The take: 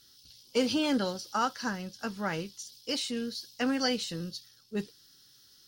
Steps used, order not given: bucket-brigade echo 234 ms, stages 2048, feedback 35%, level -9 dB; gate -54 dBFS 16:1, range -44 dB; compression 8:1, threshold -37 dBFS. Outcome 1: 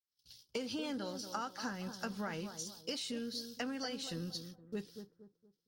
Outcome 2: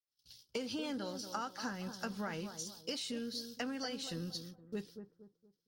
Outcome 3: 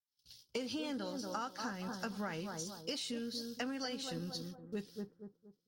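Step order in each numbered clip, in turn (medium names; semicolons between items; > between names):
gate > compression > bucket-brigade echo; compression > gate > bucket-brigade echo; gate > bucket-brigade echo > compression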